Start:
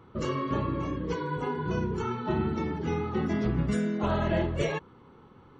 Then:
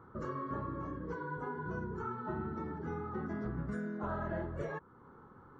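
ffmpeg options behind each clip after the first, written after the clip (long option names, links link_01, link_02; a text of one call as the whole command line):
ffmpeg -i in.wav -af "highshelf=frequency=2000:width_type=q:width=3:gain=-9.5,acompressor=threshold=-44dB:ratio=1.5,volume=-4dB" out.wav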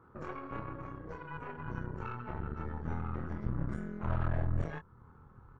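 ffmpeg -i in.wav -filter_complex "[0:a]asplit=2[link_01][link_02];[link_02]adelay=25,volume=-4.5dB[link_03];[link_01][link_03]amix=inputs=2:normalize=0,asubboost=boost=7.5:cutoff=110,aeval=exprs='0.119*(cos(1*acos(clip(val(0)/0.119,-1,1)))-cos(1*PI/2))+0.0299*(cos(4*acos(clip(val(0)/0.119,-1,1)))-cos(4*PI/2))+0.00596*(cos(8*acos(clip(val(0)/0.119,-1,1)))-cos(8*PI/2))':channel_layout=same,volume=-5dB" out.wav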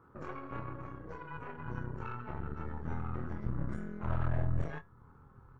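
ffmpeg -i in.wav -af "flanger=delay=6.9:depth=2.2:regen=82:speed=0.4:shape=triangular,volume=3.5dB" out.wav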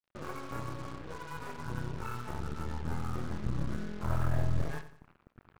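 ffmpeg -i in.wav -af "acrusher=bits=7:mix=0:aa=0.5,aecho=1:1:90|180|270|360:0.224|0.0828|0.0306|0.0113,volume=2dB" out.wav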